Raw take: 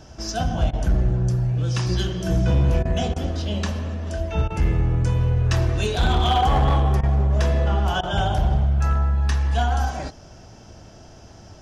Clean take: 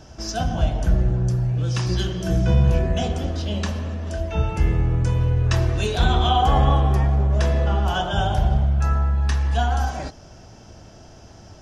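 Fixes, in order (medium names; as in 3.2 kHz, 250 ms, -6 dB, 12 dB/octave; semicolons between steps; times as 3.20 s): clip repair -13 dBFS; interpolate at 0.71/2.83/3.14/4.48/7.01/8.01 s, 21 ms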